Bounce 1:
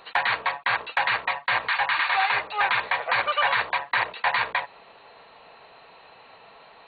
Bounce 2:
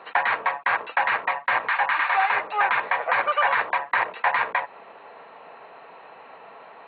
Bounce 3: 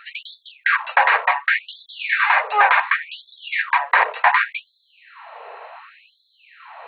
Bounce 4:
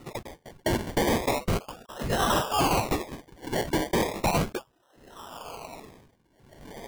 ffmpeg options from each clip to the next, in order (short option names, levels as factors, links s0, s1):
-filter_complex "[0:a]acrossover=split=170 2500:gain=0.158 1 0.0631[s0][s1][s2];[s0][s1][s2]amix=inputs=3:normalize=0,asplit=2[s3][s4];[s4]acompressor=threshold=0.0251:ratio=6,volume=0.75[s5];[s3][s5]amix=inputs=2:normalize=0,volume=1.12"
-af "afftfilt=real='re*gte(b*sr/1024,370*pow(3400/370,0.5+0.5*sin(2*PI*0.68*pts/sr)))':imag='im*gte(b*sr/1024,370*pow(3400/370,0.5+0.5*sin(2*PI*0.68*pts/sr)))':win_size=1024:overlap=0.75,volume=2.24"
-af "acrusher=samples=27:mix=1:aa=0.000001:lfo=1:lforange=16.2:lforate=0.35,asoftclip=type=tanh:threshold=0.133,volume=0.75"